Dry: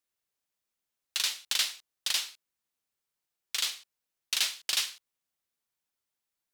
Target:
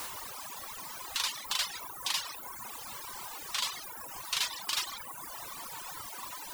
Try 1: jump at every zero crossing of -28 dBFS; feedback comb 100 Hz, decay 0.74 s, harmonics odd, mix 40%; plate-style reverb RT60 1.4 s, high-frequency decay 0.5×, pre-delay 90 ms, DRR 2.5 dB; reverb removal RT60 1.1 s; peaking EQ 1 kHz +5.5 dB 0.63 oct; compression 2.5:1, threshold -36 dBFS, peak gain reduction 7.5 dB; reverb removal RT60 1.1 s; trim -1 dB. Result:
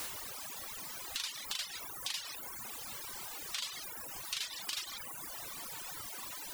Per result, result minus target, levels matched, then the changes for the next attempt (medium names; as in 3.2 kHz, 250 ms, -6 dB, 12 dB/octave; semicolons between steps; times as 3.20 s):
compression: peak gain reduction +7.5 dB; 1 kHz band -4.0 dB
remove: compression 2.5:1, threshold -36 dBFS, peak gain reduction 7.5 dB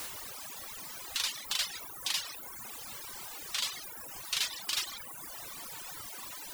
1 kHz band -5.5 dB
change: peaking EQ 1 kHz +14 dB 0.63 oct